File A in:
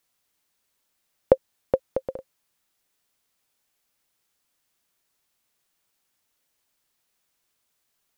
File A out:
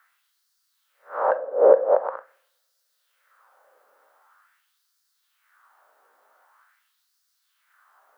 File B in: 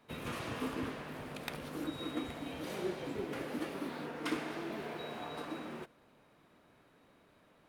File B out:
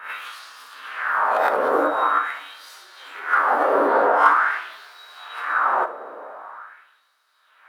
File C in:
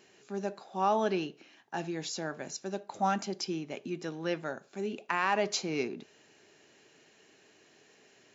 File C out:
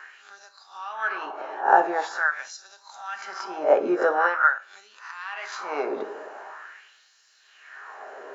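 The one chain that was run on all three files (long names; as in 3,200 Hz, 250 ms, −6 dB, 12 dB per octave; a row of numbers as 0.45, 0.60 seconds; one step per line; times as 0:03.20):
peak hold with a rise ahead of every peak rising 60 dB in 0.35 s
high-shelf EQ 5,400 Hz +11.5 dB
soft clipping −8.5 dBFS
downward compressor 6 to 1, threshold −35 dBFS
drawn EQ curve 150 Hz 0 dB, 1,400 Hz +14 dB, 2,400 Hz −9 dB, 6,700 Hz −19 dB
coupled-rooms reverb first 0.32 s, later 3.1 s, from −21 dB, DRR 6.5 dB
auto-filter high-pass sine 0.45 Hz 470–4,800 Hz
every ending faded ahead of time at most 330 dB per second
normalise the peak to −3 dBFS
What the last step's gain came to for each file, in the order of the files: +8.5, +13.0, +10.0 decibels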